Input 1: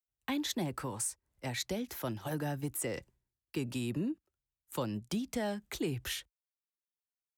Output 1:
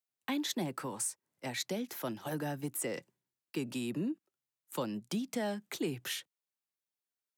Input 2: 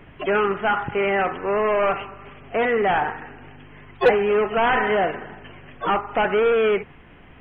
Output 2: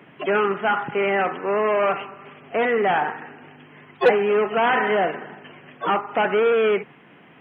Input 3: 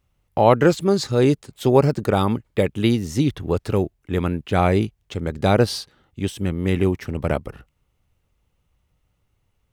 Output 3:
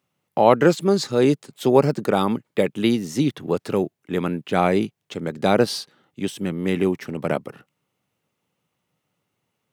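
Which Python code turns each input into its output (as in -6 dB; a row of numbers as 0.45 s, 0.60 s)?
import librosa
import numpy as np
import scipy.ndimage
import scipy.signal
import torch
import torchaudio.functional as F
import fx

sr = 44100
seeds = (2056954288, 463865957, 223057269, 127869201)

y = scipy.signal.sosfilt(scipy.signal.butter(4, 150.0, 'highpass', fs=sr, output='sos'), x)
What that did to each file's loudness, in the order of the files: -0.5 LU, 0.0 LU, -1.0 LU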